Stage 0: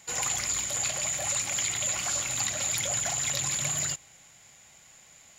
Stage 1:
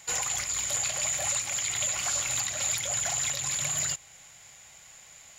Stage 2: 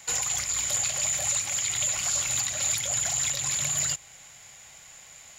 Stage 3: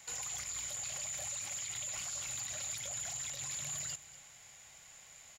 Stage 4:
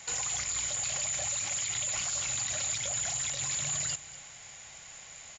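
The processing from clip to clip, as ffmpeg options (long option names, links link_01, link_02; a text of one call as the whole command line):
ffmpeg -i in.wav -af "equalizer=frequency=240:width=0.8:gain=-6.5,alimiter=limit=-21.5dB:level=0:latency=1:release=378,volume=3.5dB" out.wav
ffmpeg -i in.wav -filter_complex "[0:a]acrossover=split=260|3000[link_01][link_02][link_03];[link_02]acompressor=threshold=-39dB:ratio=6[link_04];[link_01][link_04][link_03]amix=inputs=3:normalize=0,volume=2.5dB" out.wav
ffmpeg -i in.wav -af "alimiter=level_in=0.5dB:limit=-24dB:level=0:latency=1:release=30,volume=-0.5dB,aecho=1:1:240:0.133,volume=-7.5dB" out.wav
ffmpeg -i in.wav -af "aresample=16000,aresample=44100,volume=8.5dB" out.wav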